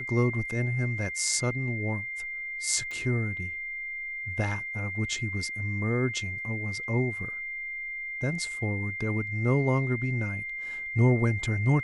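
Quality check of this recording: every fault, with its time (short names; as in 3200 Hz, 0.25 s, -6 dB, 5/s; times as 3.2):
tone 2100 Hz -33 dBFS
2.91 pop -26 dBFS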